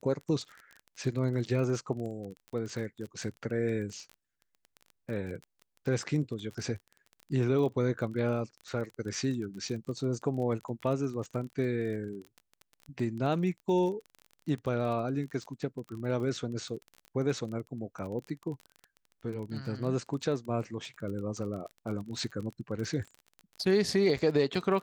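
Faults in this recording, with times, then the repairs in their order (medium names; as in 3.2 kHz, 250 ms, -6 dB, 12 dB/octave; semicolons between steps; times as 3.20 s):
crackle 26 per s -37 dBFS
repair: de-click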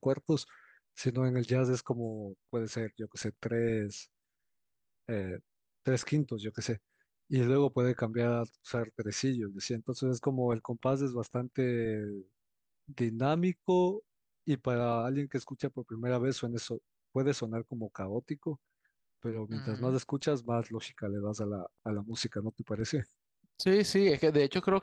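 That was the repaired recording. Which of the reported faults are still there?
nothing left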